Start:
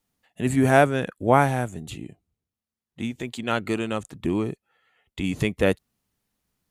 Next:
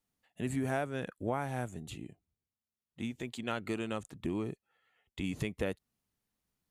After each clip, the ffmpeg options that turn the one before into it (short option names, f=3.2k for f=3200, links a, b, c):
-af "acompressor=threshold=-22dB:ratio=6,volume=-8dB"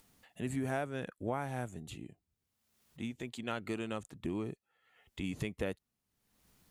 -af "acompressor=mode=upward:threshold=-49dB:ratio=2.5,volume=-2dB"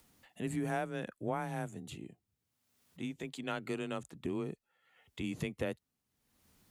-af "afreqshift=22"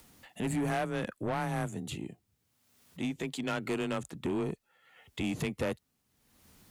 -af "asoftclip=type=tanh:threshold=-34dB,volume=8dB"